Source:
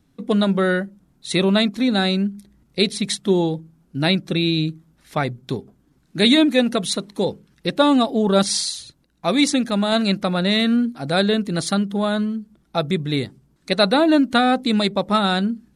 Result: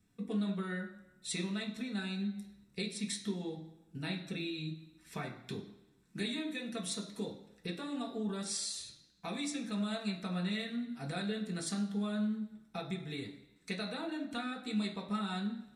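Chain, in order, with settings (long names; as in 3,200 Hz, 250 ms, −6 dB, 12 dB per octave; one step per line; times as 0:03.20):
downward compressor 6 to 1, threshold −26 dBFS, peak gain reduction 14.5 dB
flanger 0.32 Hz, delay 9.5 ms, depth 2.2 ms, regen −68%
convolution reverb RT60 0.90 s, pre-delay 3 ms, DRR 0 dB
level −5 dB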